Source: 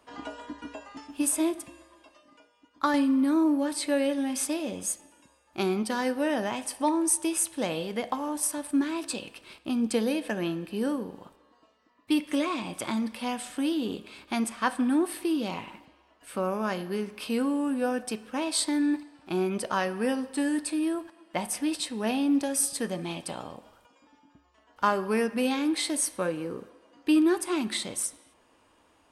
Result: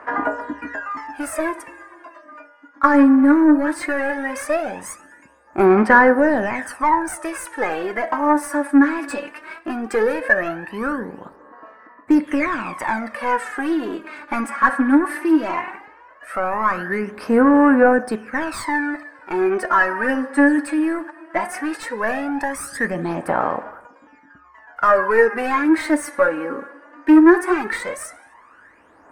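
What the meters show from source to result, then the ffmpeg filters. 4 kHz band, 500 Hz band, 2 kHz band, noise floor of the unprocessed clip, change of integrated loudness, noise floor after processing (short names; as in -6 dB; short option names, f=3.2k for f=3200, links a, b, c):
-5.0 dB, +11.0 dB, +16.0 dB, -64 dBFS, +9.5 dB, -50 dBFS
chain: -filter_complex "[0:a]asplit=2[a][b];[b]highpass=f=720:p=1,volume=20dB,asoftclip=type=tanh:threshold=-10dB[c];[a][c]amix=inputs=2:normalize=0,lowpass=f=6k:p=1,volume=-6dB,aphaser=in_gain=1:out_gain=1:delay=3.6:decay=0.7:speed=0.17:type=sinusoidal,highshelf=f=2.4k:t=q:w=3:g=-11.5,volume=-1.5dB"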